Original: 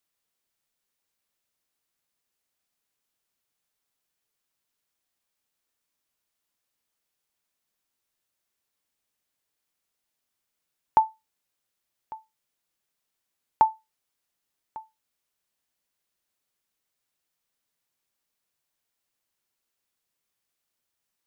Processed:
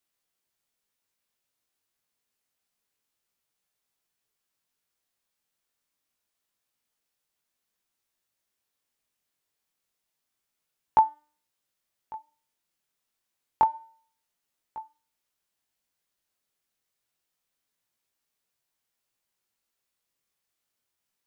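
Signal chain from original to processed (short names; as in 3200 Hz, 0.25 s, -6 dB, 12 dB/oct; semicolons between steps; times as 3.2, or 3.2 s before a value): chorus 0.27 Hz, delay 16 ms, depth 7.5 ms; de-hum 299.4 Hz, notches 30; gain +2.5 dB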